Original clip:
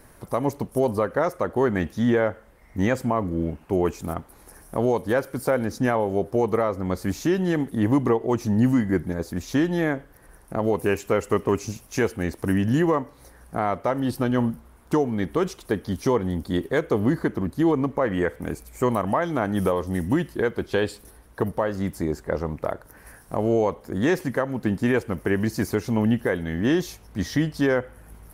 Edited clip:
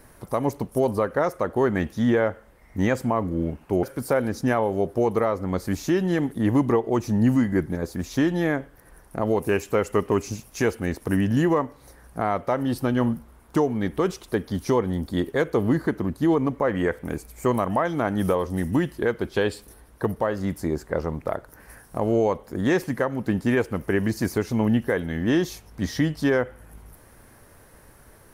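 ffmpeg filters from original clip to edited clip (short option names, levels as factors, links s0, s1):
-filter_complex "[0:a]asplit=2[s0][s1];[s0]atrim=end=3.832[s2];[s1]atrim=start=5.198[s3];[s2][s3]acrossfade=d=0.004:c1=hsin:c2=hsin"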